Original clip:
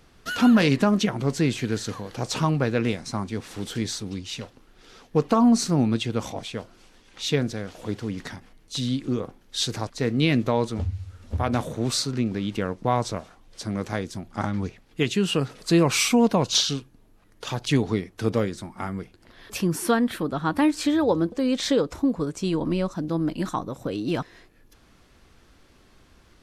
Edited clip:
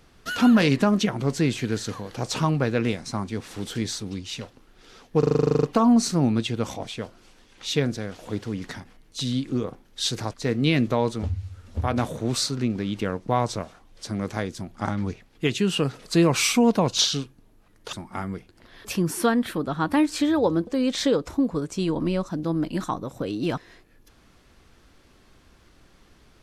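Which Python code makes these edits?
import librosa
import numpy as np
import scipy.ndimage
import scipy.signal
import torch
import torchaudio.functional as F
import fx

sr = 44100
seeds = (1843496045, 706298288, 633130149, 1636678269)

y = fx.edit(x, sr, fx.stutter(start_s=5.19, slice_s=0.04, count=12),
    fx.cut(start_s=17.49, length_s=1.09), tone=tone)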